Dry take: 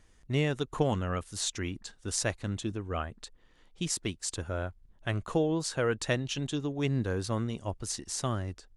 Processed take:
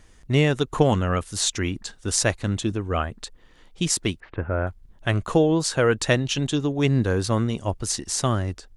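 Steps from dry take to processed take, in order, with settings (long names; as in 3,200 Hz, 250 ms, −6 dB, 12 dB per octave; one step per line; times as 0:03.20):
0:04.20–0:04.67: Butterworth low-pass 2,300 Hz 36 dB per octave
level +9 dB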